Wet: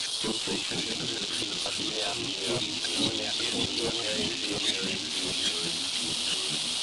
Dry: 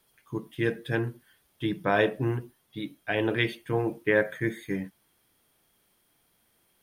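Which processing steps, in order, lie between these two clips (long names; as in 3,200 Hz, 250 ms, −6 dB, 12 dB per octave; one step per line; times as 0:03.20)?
reversed piece by piece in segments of 237 ms
soft clipping −19.5 dBFS, distortion −13 dB
gate with flip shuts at −33 dBFS, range −33 dB
surface crackle 440 per second −52 dBFS
mid-hump overdrive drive 31 dB, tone 3,200 Hz, clips at −29 dBFS
high shelf with overshoot 2,800 Hz +11.5 dB, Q 3
delay with pitch and tempo change per echo 204 ms, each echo −2 semitones, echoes 3
downsampling to 22,050 Hz
level +6.5 dB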